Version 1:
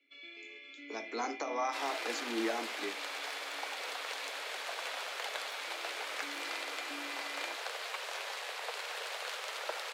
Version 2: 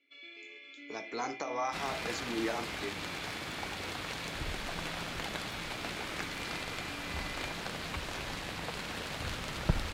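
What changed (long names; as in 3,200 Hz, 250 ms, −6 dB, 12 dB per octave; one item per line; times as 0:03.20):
second sound: remove Butterworth high-pass 440 Hz 48 dB per octave
master: remove Butterworth high-pass 210 Hz 96 dB per octave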